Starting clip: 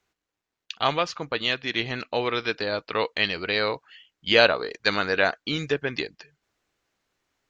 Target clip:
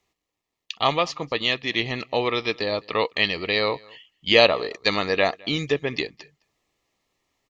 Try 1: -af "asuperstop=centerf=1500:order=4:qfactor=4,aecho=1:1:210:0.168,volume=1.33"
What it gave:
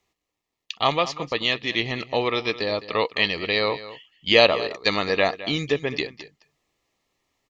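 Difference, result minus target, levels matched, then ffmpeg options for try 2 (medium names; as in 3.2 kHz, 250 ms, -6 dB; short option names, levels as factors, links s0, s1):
echo-to-direct +10.5 dB
-af "asuperstop=centerf=1500:order=4:qfactor=4,aecho=1:1:210:0.0501,volume=1.33"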